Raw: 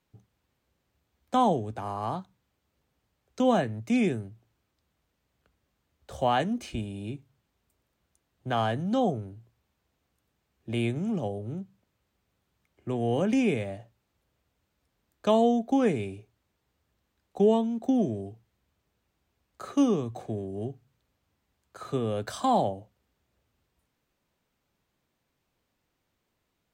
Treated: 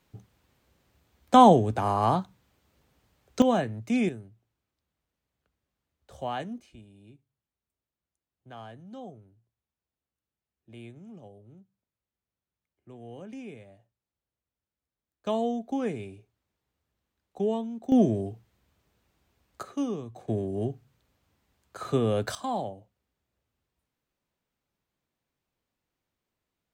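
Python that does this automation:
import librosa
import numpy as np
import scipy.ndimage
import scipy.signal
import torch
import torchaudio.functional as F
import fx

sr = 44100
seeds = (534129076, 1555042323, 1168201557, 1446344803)

y = fx.gain(x, sr, db=fx.steps((0.0, 8.0), (3.42, -1.0), (4.09, -8.0), (6.6, -17.0), (15.26, -6.0), (17.92, 5.0), (19.63, -7.0), (20.28, 4.0), (22.35, -7.0)))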